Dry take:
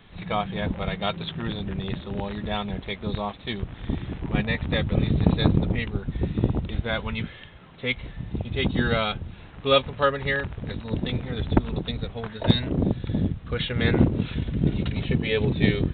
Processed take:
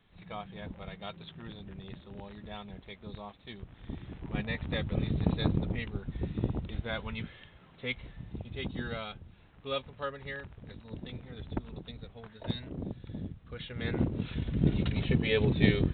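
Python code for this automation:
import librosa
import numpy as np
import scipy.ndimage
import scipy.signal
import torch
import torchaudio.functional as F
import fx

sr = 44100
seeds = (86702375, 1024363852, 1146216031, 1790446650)

y = fx.gain(x, sr, db=fx.line((3.58, -15.0), (4.57, -8.5), (7.89, -8.5), (9.09, -15.0), (13.61, -15.0), (14.65, -3.5)))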